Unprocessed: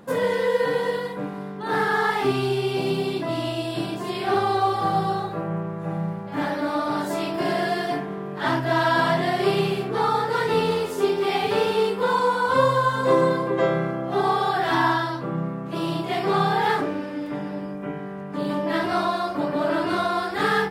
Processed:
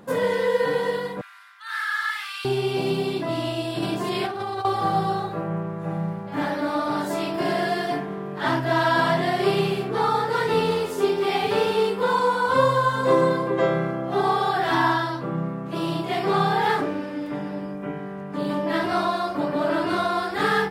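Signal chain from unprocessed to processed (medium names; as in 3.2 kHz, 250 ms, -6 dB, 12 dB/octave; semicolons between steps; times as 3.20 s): 1.21–2.45 s: steep high-pass 1.3 kHz 36 dB/octave; 3.78–4.65 s: compressor with a negative ratio -27 dBFS, ratio -1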